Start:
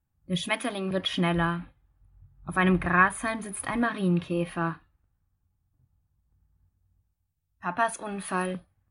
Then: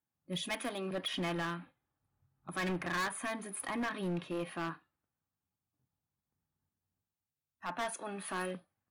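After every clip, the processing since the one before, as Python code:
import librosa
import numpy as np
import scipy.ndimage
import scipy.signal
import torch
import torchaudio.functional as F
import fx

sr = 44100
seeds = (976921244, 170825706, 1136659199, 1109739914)

y = scipy.signal.sosfilt(scipy.signal.butter(2, 220.0, 'highpass', fs=sr, output='sos'), x)
y = np.clip(10.0 ** (26.0 / 20.0) * y, -1.0, 1.0) / 10.0 ** (26.0 / 20.0)
y = y * 10.0 ** (-5.5 / 20.0)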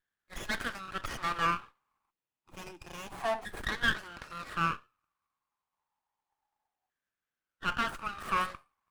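y = fx.filter_lfo_highpass(x, sr, shape='saw_down', hz=0.29, low_hz=740.0, high_hz=1700.0, q=6.5)
y = fx.spec_box(y, sr, start_s=2.11, length_s=1.02, low_hz=390.0, high_hz=2400.0, gain_db=-26)
y = fx.running_max(y, sr, window=9)
y = y * 10.0 ** (1.5 / 20.0)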